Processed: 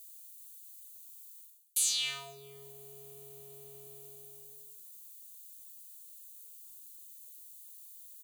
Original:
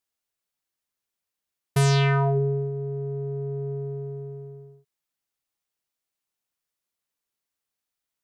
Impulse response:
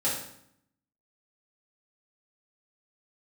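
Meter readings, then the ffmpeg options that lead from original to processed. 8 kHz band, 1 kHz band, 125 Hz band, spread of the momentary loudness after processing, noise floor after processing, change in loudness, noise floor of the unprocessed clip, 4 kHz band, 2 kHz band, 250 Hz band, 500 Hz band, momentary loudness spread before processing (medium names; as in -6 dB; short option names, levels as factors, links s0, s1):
+7.0 dB, -23.0 dB, -36.5 dB, 17 LU, -53 dBFS, -14.0 dB, under -85 dBFS, 0.0 dB, -12.5 dB, no reading, -25.0 dB, 17 LU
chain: -filter_complex "[0:a]equalizer=f=5300:w=6.2:g=-13.5,aexciter=amount=12.7:drive=6.1:freq=2600,areverse,acompressor=threshold=0.0501:ratio=16,areverse,aderivative,aecho=1:1:1.7:0.31,asplit=2[s0][s1];[s1]adelay=437.3,volume=0.0501,highshelf=f=4000:g=-9.84[s2];[s0][s2]amix=inputs=2:normalize=0,volume=1.58"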